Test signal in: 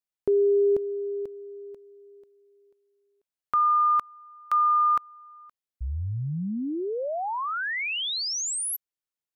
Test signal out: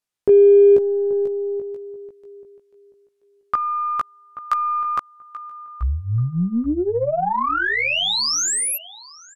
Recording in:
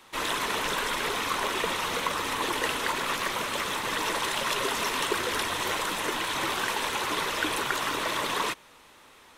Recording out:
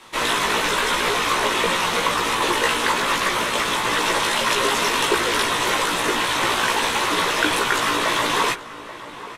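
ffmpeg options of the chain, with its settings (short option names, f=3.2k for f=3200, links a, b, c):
-filter_complex "[0:a]lowpass=12k,asplit=2[a][b];[b]adelay=17,volume=-2.5dB[c];[a][c]amix=inputs=2:normalize=0,asplit=2[d][e];[e]adelay=833,lowpass=f=2k:p=1,volume=-14dB,asplit=2[f][g];[g]adelay=833,lowpass=f=2k:p=1,volume=0.2[h];[d][f][h]amix=inputs=3:normalize=0,aeval=exprs='0.266*(cos(1*acos(clip(val(0)/0.266,-1,1)))-cos(1*PI/2))+0.00237*(cos(8*acos(clip(val(0)/0.266,-1,1)))-cos(8*PI/2))':c=same,volume=6.5dB"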